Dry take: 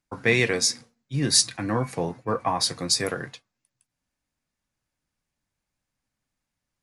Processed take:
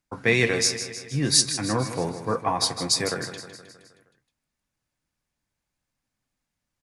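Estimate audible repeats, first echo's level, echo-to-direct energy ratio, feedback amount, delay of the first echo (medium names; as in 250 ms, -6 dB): 5, -11.0 dB, -9.5 dB, 57%, 157 ms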